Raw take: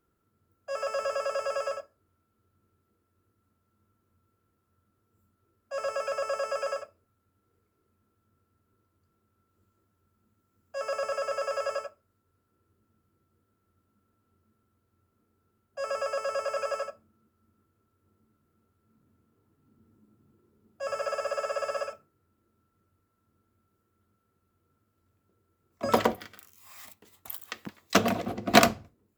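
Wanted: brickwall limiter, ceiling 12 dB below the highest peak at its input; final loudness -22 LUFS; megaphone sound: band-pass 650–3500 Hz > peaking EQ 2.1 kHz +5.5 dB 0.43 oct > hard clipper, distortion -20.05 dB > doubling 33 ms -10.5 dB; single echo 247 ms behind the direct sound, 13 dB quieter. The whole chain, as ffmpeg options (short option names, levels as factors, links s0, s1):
-filter_complex "[0:a]alimiter=limit=0.211:level=0:latency=1,highpass=650,lowpass=3500,equalizer=f=2100:t=o:w=0.43:g=5.5,aecho=1:1:247:0.224,asoftclip=type=hard:threshold=0.0841,asplit=2[s0][s1];[s1]adelay=33,volume=0.299[s2];[s0][s2]amix=inputs=2:normalize=0,volume=4.47"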